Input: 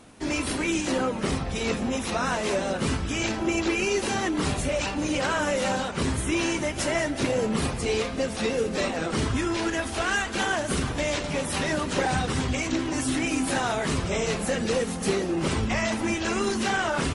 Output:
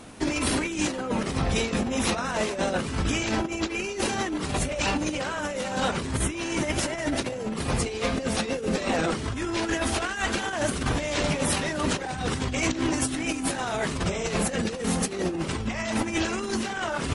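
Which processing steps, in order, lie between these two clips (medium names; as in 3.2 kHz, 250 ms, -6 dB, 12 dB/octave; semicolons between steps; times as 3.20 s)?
compressor with a negative ratio -29 dBFS, ratio -0.5; trim +2.5 dB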